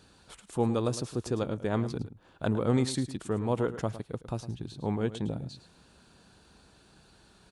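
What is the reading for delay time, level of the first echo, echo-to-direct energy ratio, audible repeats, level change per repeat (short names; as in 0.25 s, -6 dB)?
0.108 s, -13.5 dB, -13.5 dB, 1, no steady repeat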